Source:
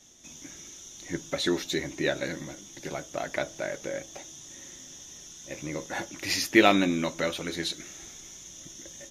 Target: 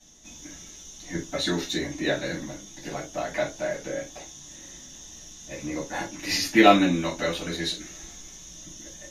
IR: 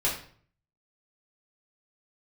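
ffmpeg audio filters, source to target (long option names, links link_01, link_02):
-filter_complex "[1:a]atrim=start_sample=2205,afade=type=out:start_time=0.2:duration=0.01,atrim=end_sample=9261,asetrate=74970,aresample=44100[link_01];[0:a][link_01]afir=irnorm=-1:irlink=0,volume=-3dB"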